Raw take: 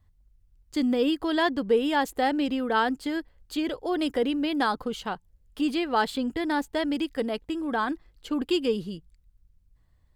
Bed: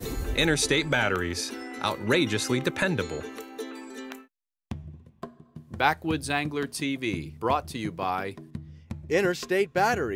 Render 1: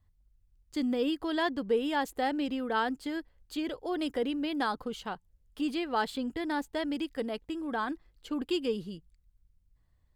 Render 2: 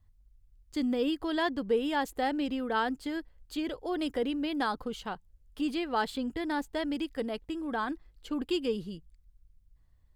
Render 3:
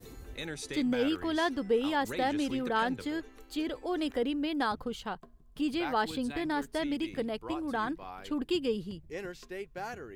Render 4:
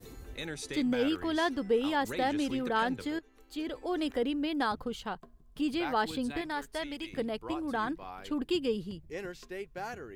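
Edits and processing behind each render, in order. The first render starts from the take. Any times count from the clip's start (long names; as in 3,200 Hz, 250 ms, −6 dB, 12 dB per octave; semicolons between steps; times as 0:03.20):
level −5.5 dB
low-shelf EQ 63 Hz +7.5 dB
mix in bed −16 dB
0:03.19–0:03.86: fade in, from −14 dB; 0:06.41–0:07.13: parametric band 210 Hz −10 dB 2.2 octaves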